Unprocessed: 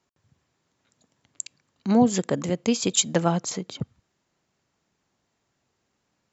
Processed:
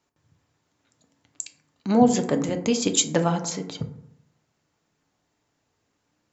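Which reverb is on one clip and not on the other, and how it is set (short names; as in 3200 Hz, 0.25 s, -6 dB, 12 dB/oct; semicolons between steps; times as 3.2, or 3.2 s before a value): FDN reverb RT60 0.75 s, low-frequency decay 1.1×, high-frequency decay 0.4×, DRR 5.5 dB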